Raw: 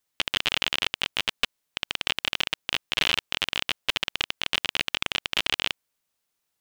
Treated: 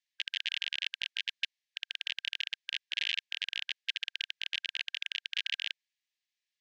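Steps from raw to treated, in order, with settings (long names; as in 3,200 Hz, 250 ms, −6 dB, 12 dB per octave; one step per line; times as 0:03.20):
high-shelf EQ 3,700 Hz +9.5 dB
brickwall limiter −6.5 dBFS, peak gain reduction 5 dB
linear-phase brick-wall band-pass 1,600–9,200 Hz
high-frequency loss of the air 180 metres
level −4.5 dB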